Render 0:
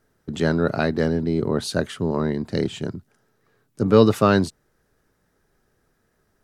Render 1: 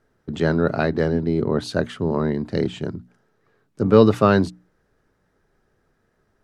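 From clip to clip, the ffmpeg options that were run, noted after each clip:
-af "aemphasis=mode=reproduction:type=50kf,bandreject=f=60:t=h:w=6,bandreject=f=120:t=h:w=6,bandreject=f=180:t=h:w=6,bandreject=f=240:t=h:w=6,bandreject=f=300:t=h:w=6,volume=1.5dB"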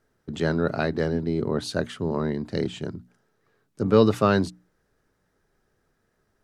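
-af "highshelf=f=3.9k:g=7,volume=-4.5dB"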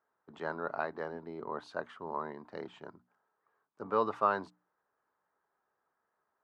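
-af "bandpass=f=1k:t=q:w=2.7:csg=0"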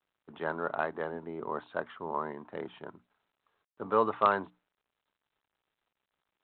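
-af "volume=3.5dB" -ar 8000 -c:a adpcm_g726 -b:a 40k

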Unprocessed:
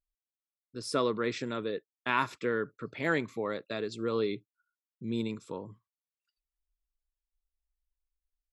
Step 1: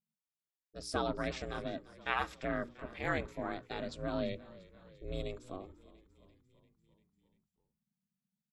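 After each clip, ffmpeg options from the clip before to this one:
-filter_complex "[0:a]aeval=exprs='val(0)*sin(2*PI*190*n/s)':c=same,bandreject=f=60:t=h:w=6,bandreject=f=120:t=h:w=6,bandreject=f=180:t=h:w=6,bandreject=f=240:t=h:w=6,bandreject=f=300:t=h:w=6,bandreject=f=360:t=h:w=6,bandreject=f=420:t=h:w=6,asplit=7[a][b][c][d][e][f][g];[b]adelay=344,afreqshift=-40,volume=-19.5dB[h];[c]adelay=688,afreqshift=-80,volume=-23.2dB[i];[d]adelay=1032,afreqshift=-120,volume=-27dB[j];[e]adelay=1376,afreqshift=-160,volume=-30.7dB[k];[f]adelay=1720,afreqshift=-200,volume=-34.5dB[l];[g]adelay=2064,afreqshift=-240,volume=-38.2dB[m];[a][h][i][j][k][l][m]amix=inputs=7:normalize=0,volume=-2dB"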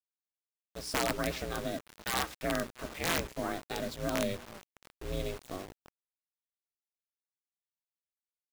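-af "aeval=exprs='(mod(15.8*val(0)+1,2)-1)/15.8':c=same,acrusher=bits=7:mix=0:aa=0.000001,volume=3.5dB"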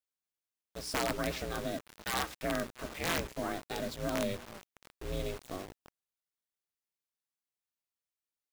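-af "asoftclip=type=tanh:threshold=-22.5dB"

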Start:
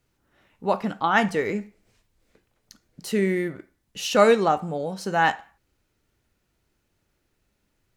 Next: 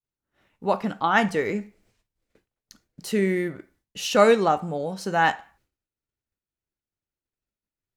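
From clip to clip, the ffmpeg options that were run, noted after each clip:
-af "agate=range=-33dB:threshold=-57dB:ratio=3:detection=peak"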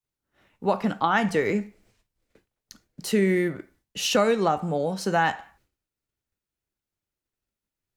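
-filter_complex "[0:a]acrossover=split=160[a][b];[b]acompressor=threshold=-21dB:ratio=6[c];[a][c]amix=inputs=2:normalize=0,volume=3dB"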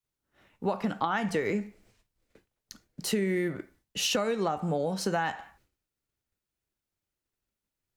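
-af "acompressor=threshold=-25dB:ratio=5"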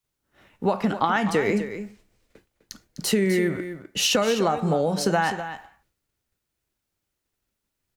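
-af "aecho=1:1:253:0.282,volume=6.5dB"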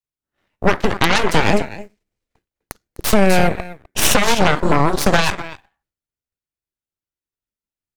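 -af "aeval=exprs='0.531*(cos(1*acos(clip(val(0)/0.531,-1,1)))-cos(1*PI/2))+0.0841*(cos(6*acos(clip(val(0)/0.531,-1,1)))-cos(6*PI/2))+0.0668*(cos(7*acos(clip(val(0)/0.531,-1,1)))-cos(7*PI/2))+0.237*(cos(8*acos(clip(val(0)/0.531,-1,1)))-cos(8*PI/2))':c=same,volume=4dB"

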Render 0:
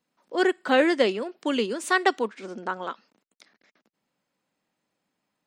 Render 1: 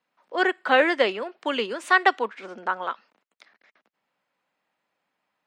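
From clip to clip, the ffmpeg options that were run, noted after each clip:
-filter_complex "[0:a]acrossover=split=550 3500:gain=0.251 1 0.224[a][b][c];[a][b][c]amix=inputs=3:normalize=0,volume=5dB"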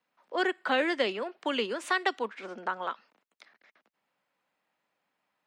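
-filter_complex "[0:a]acrossover=split=340|3000[a][b][c];[b]acompressor=threshold=-27dB:ratio=3[d];[a][d][c]amix=inputs=3:normalize=0,volume=-2dB"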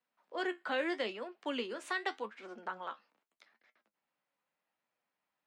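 -af "flanger=delay=8.1:depth=6.3:regen=58:speed=0.81:shape=sinusoidal,volume=-4dB"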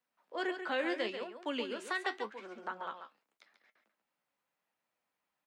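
-af "aecho=1:1:139:0.376"

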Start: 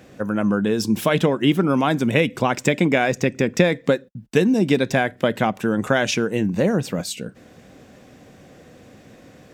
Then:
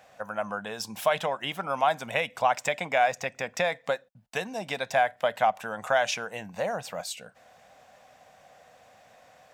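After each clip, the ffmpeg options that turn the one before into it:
-af "lowshelf=f=490:t=q:w=3:g=-12.5,volume=-6.5dB"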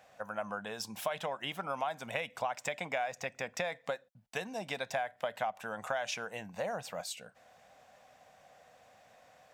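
-af "acompressor=threshold=-26dB:ratio=5,volume=-5dB"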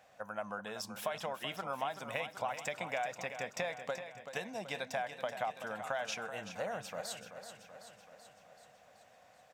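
-af "aecho=1:1:381|762|1143|1524|1905|2286|2667:0.316|0.19|0.114|0.0683|0.041|0.0246|0.0148,volume=-2.5dB"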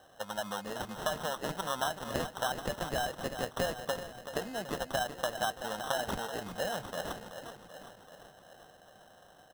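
-af "acrusher=samples=19:mix=1:aa=0.000001,volume=4dB"

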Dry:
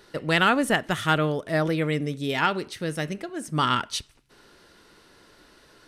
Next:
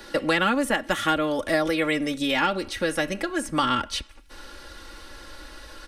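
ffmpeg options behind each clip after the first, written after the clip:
-filter_complex "[0:a]aecho=1:1:3.6:0.72,asubboost=boost=11.5:cutoff=64,acrossover=split=160|550|3000[a][b][c][d];[a]acompressor=threshold=-52dB:ratio=4[e];[b]acompressor=threshold=-37dB:ratio=4[f];[c]acompressor=threshold=-34dB:ratio=4[g];[d]acompressor=threshold=-45dB:ratio=4[h];[e][f][g][h]amix=inputs=4:normalize=0,volume=9dB"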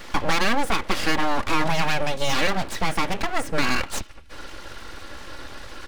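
-filter_complex "[0:a]highshelf=f=5.6k:g=-11.5,asplit=2[a][b];[b]alimiter=limit=-20dB:level=0:latency=1:release=27,volume=2dB[c];[a][c]amix=inputs=2:normalize=0,aeval=exprs='abs(val(0))':c=same"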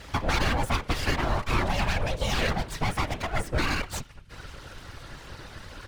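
-af "afftfilt=real='hypot(re,im)*cos(2*PI*random(0))':imag='hypot(re,im)*sin(2*PI*random(1))':win_size=512:overlap=0.75,volume=1dB"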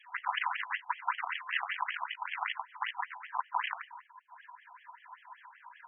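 -af "afftfilt=real='real(if(between(b,1,1008),(2*floor((b-1)/48)+1)*48-b,b),0)':imag='imag(if(between(b,1,1008),(2*floor((b-1)/48)+1)*48-b,b),0)*if(between(b,1,1008),-1,1)':win_size=2048:overlap=0.75,aeval=exprs='0.299*(cos(1*acos(clip(val(0)/0.299,-1,1)))-cos(1*PI/2))+0.0237*(cos(3*acos(clip(val(0)/0.299,-1,1)))-cos(3*PI/2))+0.0531*(cos(7*acos(clip(val(0)/0.299,-1,1)))-cos(7*PI/2))':c=same,afftfilt=real='re*between(b*sr/1024,930*pow(2400/930,0.5+0.5*sin(2*PI*5.2*pts/sr))/1.41,930*pow(2400/930,0.5+0.5*sin(2*PI*5.2*pts/sr))*1.41)':imag='im*between(b*sr/1024,930*pow(2400/930,0.5+0.5*sin(2*PI*5.2*pts/sr))/1.41,930*pow(2400/930,0.5+0.5*sin(2*PI*5.2*pts/sr))*1.41)':win_size=1024:overlap=0.75"

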